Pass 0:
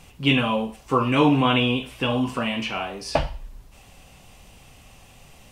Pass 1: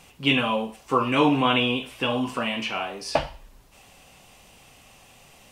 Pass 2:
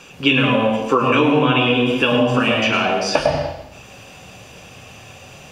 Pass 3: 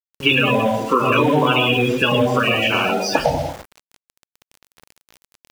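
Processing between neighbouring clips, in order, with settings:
bass shelf 150 Hz -11.5 dB
reverberation RT60 0.85 s, pre-delay 101 ms, DRR 3.5 dB; compression 6:1, threshold -16 dBFS, peak gain reduction 9.5 dB; trim +4 dB
coarse spectral quantiser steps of 30 dB; small samples zeroed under -31.5 dBFS

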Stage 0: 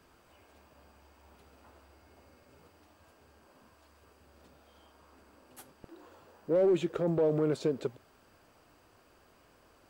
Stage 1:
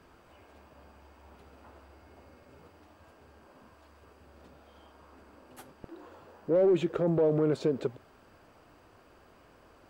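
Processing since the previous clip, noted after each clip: treble shelf 3.8 kHz -9 dB; in parallel at -2 dB: peak limiter -30 dBFS, peak gain reduction 10.5 dB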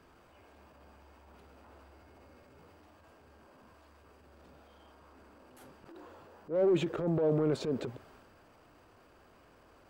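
transient shaper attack -11 dB, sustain +4 dB; trim -2 dB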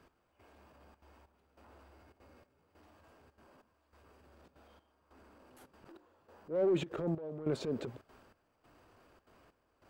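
trance gate "x....xxxxxxx.xx" 191 bpm -12 dB; trim -3 dB

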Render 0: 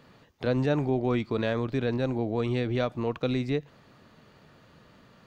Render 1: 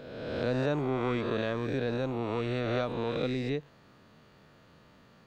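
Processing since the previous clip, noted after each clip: reverse spectral sustain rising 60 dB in 1.53 s; trim -5.5 dB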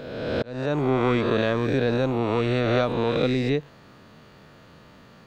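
slow attack 462 ms; trim +8.5 dB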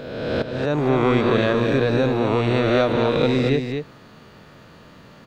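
delay 228 ms -6 dB; trim +3 dB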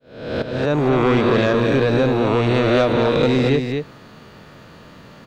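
fade-in on the opening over 0.56 s; sine folder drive 4 dB, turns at -4.5 dBFS; trim -4.5 dB

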